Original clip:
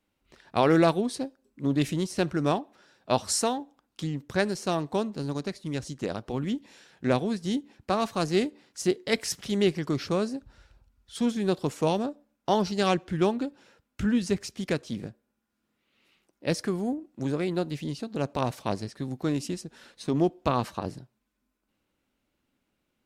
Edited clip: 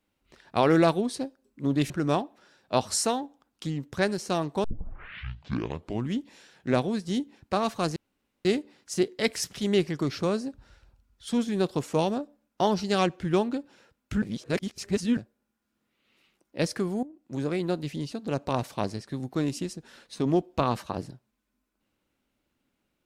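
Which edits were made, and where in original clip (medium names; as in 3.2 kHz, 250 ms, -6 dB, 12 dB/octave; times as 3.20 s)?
1.90–2.27 s: delete
5.01 s: tape start 1.54 s
8.33 s: insert room tone 0.49 s
14.10–15.05 s: reverse
16.91–17.38 s: fade in, from -14.5 dB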